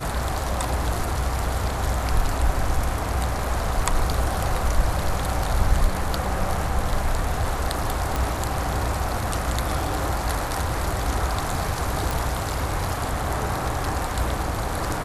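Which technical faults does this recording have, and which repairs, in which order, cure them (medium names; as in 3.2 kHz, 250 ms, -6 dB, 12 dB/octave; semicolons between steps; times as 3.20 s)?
8.16 s: pop
12.11 s: pop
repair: de-click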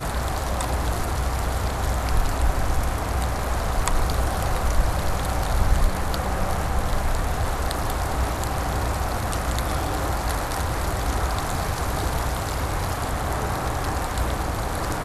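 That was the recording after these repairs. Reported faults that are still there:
nothing left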